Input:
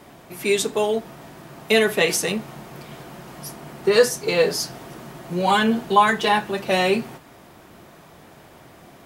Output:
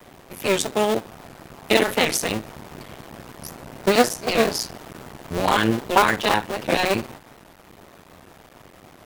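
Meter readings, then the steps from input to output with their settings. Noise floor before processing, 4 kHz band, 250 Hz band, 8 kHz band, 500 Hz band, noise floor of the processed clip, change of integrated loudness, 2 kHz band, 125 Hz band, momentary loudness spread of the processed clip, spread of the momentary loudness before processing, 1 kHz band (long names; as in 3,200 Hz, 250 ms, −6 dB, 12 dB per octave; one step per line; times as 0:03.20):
−48 dBFS, 0.0 dB, 0.0 dB, −0.5 dB, −2.0 dB, −50 dBFS, −1.0 dB, −0.5 dB, +1.0 dB, 21 LU, 21 LU, −1.0 dB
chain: sub-harmonics by changed cycles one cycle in 2, muted
wow of a warped record 78 rpm, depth 160 cents
level +2 dB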